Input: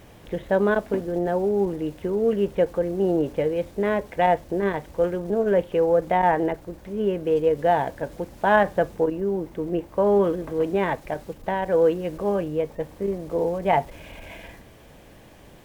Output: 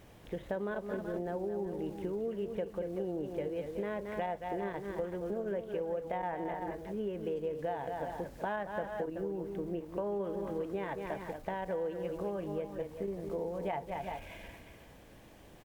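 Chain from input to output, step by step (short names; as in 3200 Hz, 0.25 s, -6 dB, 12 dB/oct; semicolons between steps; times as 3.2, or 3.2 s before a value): tapped delay 0.224/0.377/0.388 s -9/-14/-17 dB; compressor, threshold -25 dBFS, peak gain reduction 12.5 dB; gain -8 dB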